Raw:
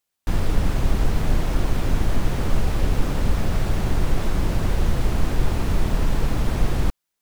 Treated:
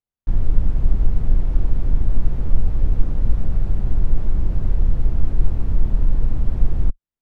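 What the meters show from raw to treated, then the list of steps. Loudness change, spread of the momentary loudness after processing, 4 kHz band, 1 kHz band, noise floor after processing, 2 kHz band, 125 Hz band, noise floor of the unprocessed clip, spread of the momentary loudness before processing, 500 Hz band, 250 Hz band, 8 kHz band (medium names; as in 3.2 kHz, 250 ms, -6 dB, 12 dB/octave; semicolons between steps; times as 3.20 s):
+1.0 dB, 2 LU, under -15 dB, -12.5 dB, under -85 dBFS, -16.0 dB, +0.5 dB, -80 dBFS, 1 LU, -9.0 dB, -5.5 dB, under -20 dB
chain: tilt EQ -3.5 dB/octave; trim -13 dB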